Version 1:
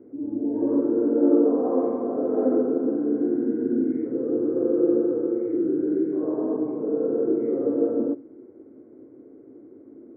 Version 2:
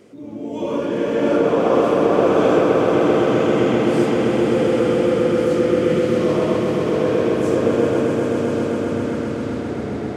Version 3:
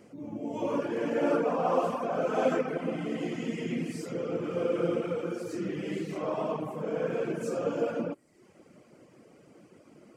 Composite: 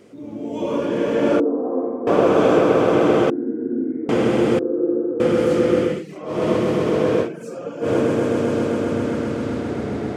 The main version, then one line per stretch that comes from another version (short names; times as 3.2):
2
1.4–2.07 from 1
3.3–4.09 from 1
4.59–5.2 from 1
5.92–6.36 from 3, crossfade 0.24 s
7.25–7.85 from 3, crossfade 0.10 s